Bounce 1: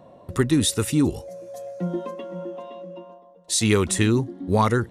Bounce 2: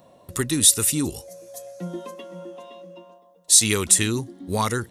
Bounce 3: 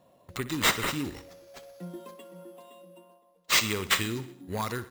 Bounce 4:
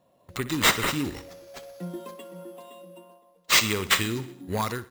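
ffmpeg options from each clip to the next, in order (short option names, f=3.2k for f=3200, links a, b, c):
-af "crystalizer=i=5:c=0,volume=-5.5dB"
-af "acrusher=samples=4:mix=1:aa=0.000001,aecho=1:1:62|124|186|248|310|372:0.168|0.0957|0.0545|0.0311|0.0177|0.0101,volume=-8.5dB"
-af "dynaudnorm=f=130:g=5:m=9dB,volume=-4dB"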